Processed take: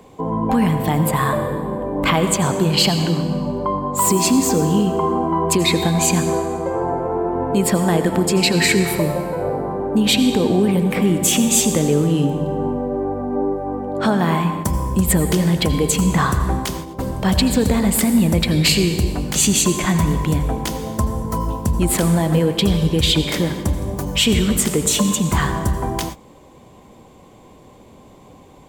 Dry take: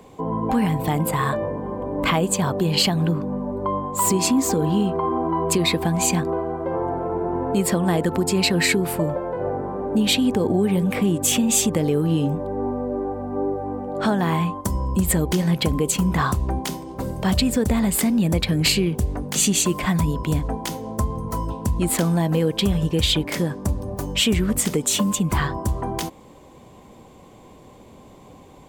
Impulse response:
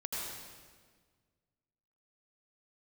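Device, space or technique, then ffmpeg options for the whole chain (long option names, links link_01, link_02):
keyed gated reverb: -filter_complex "[0:a]asplit=3[link_01][link_02][link_03];[1:a]atrim=start_sample=2205[link_04];[link_02][link_04]afir=irnorm=-1:irlink=0[link_05];[link_03]apad=whole_len=1264859[link_06];[link_05][link_06]sidechaingate=range=-33dB:threshold=-33dB:ratio=16:detection=peak,volume=-7.5dB[link_07];[link_01][link_07]amix=inputs=2:normalize=0,volume=1dB"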